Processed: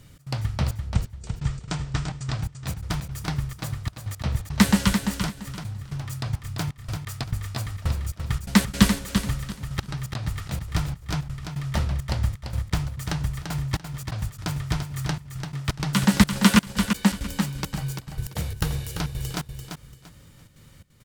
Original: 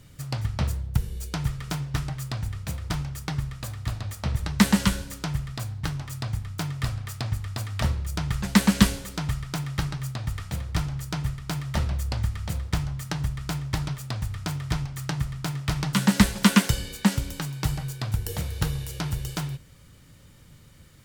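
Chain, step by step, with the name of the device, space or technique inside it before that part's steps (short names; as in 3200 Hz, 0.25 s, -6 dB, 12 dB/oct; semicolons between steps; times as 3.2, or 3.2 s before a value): 0.76–2.38 steep low-pass 8600 Hz 72 dB/oct; trance gate with a delay (step gate "xx.xxxxx.xxx..x." 170 bpm -24 dB; feedback echo 0.341 s, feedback 25%, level -7 dB); gain +1 dB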